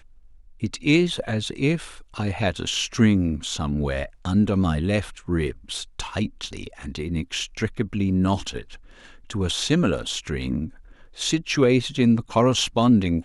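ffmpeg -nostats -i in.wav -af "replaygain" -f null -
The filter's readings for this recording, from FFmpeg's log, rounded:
track_gain = +2.5 dB
track_peak = 0.380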